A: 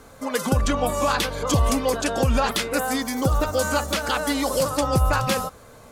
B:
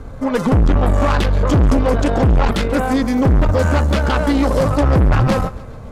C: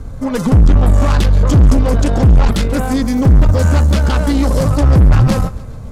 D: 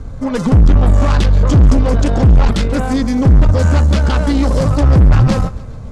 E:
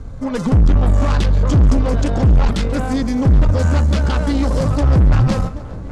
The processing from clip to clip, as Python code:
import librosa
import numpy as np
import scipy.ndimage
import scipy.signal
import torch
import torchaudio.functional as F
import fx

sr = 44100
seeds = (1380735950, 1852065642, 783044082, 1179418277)

y1 = fx.riaa(x, sr, side='playback')
y1 = fx.tube_stage(y1, sr, drive_db=18.0, bias=0.55)
y1 = fx.echo_feedback(y1, sr, ms=138, feedback_pct=56, wet_db=-20.0)
y1 = F.gain(torch.from_numpy(y1), 8.0).numpy()
y2 = fx.bass_treble(y1, sr, bass_db=8, treble_db=9)
y2 = F.gain(torch.from_numpy(y2), -2.5).numpy()
y3 = scipy.signal.sosfilt(scipy.signal.butter(2, 7400.0, 'lowpass', fs=sr, output='sos'), y2)
y4 = fx.echo_tape(y3, sr, ms=778, feedback_pct=62, wet_db=-14, lp_hz=2200.0, drive_db=4.0, wow_cents=37)
y4 = F.gain(torch.from_numpy(y4), -3.5).numpy()